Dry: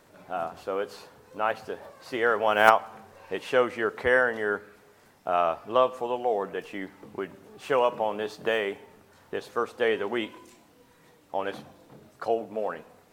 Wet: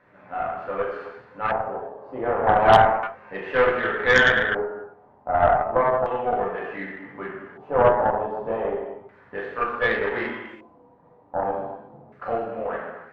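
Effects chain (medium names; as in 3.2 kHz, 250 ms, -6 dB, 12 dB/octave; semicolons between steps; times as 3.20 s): gated-style reverb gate 400 ms falling, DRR -6.5 dB; LFO low-pass square 0.33 Hz 840–1800 Hz; Chebyshev shaper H 4 -14 dB, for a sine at 2.5 dBFS; trim -6.5 dB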